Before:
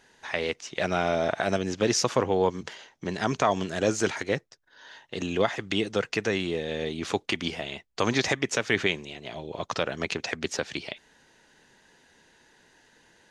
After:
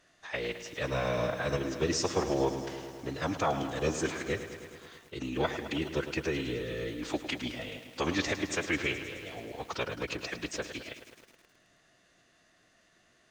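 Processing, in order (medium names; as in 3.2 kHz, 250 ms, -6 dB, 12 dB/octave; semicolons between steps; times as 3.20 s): formant-preserving pitch shift -5.5 st; bit-crushed delay 106 ms, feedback 80%, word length 8-bit, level -11 dB; trim -5 dB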